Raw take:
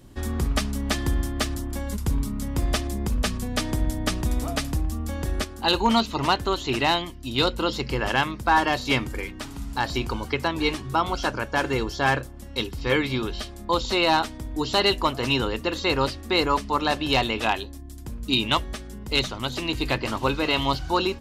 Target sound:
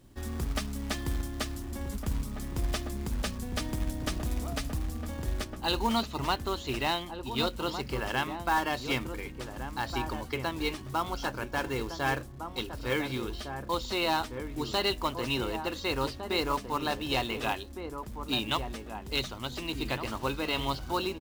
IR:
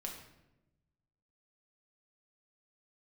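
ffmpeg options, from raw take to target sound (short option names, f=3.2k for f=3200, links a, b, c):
-filter_complex "[0:a]acrusher=bits=4:mode=log:mix=0:aa=0.000001,asplit=2[a][b];[b]adelay=1458,volume=-7dB,highshelf=f=4k:g=-32.8[c];[a][c]amix=inputs=2:normalize=0,volume=-8dB"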